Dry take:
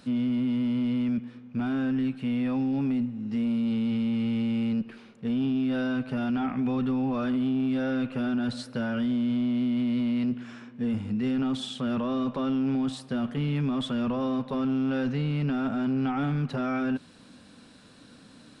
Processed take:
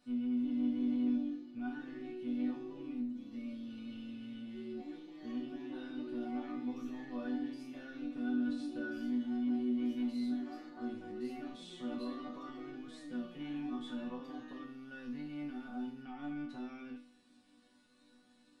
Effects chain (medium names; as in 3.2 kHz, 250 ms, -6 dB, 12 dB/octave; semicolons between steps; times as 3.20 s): ever faster or slower copies 372 ms, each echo +3 st, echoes 2, each echo -6 dB; chord resonator B3 minor, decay 0.45 s; trim +4.5 dB